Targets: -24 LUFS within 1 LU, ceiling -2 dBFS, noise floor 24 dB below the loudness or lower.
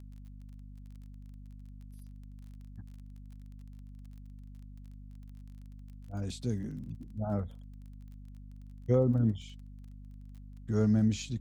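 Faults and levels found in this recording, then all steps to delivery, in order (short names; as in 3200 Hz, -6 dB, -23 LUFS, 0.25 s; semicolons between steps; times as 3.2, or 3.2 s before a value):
ticks 26/s; hum 50 Hz; harmonics up to 250 Hz; hum level -45 dBFS; loudness -32.0 LUFS; peak -14.5 dBFS; loudness target -24.0 LUFS
-> de-click; notches 50/100/150/200/250 Hz; gain +8 dB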